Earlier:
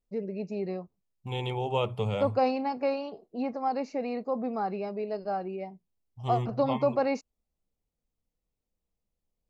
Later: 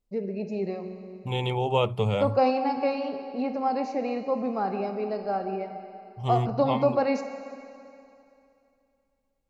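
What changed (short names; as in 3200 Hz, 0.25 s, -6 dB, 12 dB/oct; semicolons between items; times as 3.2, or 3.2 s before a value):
second voice +4.5 dB; reverb: on, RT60 2.7 s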